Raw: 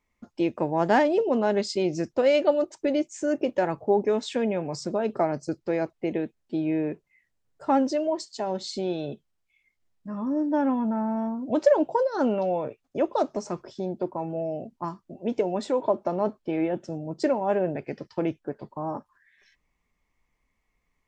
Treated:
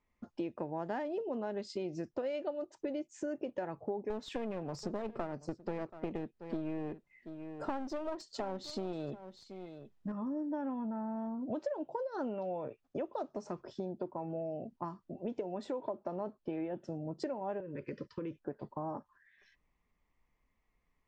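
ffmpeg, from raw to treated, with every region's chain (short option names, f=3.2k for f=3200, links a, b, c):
-filter_complex "[0:a]asettb=1/sr,asplit=3[a][b][c];[a]atrim=end=4.104[d];[b]atrim=start=4.1:end=10.12,asetpts=PTS-STARTPTS,afade=t=in:d=0.004:c=qsin,afade=t=out:st=6.016:d=0.004:c=qsin,acontrast=31,aeval=exprs='clip(val(0),-1,0.0422)':c=same,aecho=1:1:730:0.1,atrim=end_sample=265482[e];[c]atrim=start=10.116[f];[d][e]acrossfade=d=0.004:c1=hsin:c2=qsin[g];[g][f]acrossfade=d=0.004:c1=qsin:c2=hsin,asettb=1/sr,asplit=3[h][i][j];[h]atrim=end=17.604[k];[i]atrim=start=17.6:end=18.37,asetpts=PTS-STARTPTS,afade=t=in:d=0.004:c=qsin,afade=t=out:st=0.766:d=0.004:c=qsin,asuperstop=centerf=740:order=20:qfactor=2.1,acompressor=threshold=-31dB:ratio=6:attack=3.2:release=140:knee=1:detection=peak[l];[j]atrim=start=18.366[m];[k][l]acrossfade=d=0.004:c1=hsin:c2=qsin[n];[n][m]acrossfade=d=0.004:c1=qsin:c2=hsin,acompressor=threshold=-33dB:ratio=5,lowpass=f=2.9k:p=1,bandreject=f=2.2k:w=20,volume=-2.5dB"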